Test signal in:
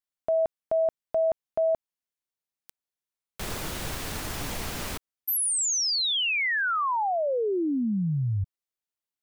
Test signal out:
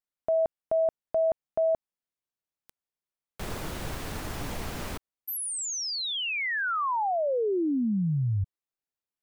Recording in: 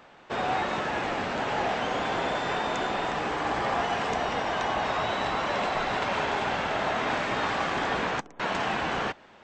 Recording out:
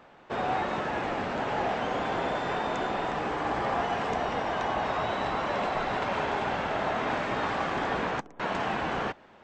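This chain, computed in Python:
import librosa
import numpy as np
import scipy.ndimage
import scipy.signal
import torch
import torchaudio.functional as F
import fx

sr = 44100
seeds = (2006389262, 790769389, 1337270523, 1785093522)

y = fx.high_shelf(x, sr, hz=2000.0, db=-7.0)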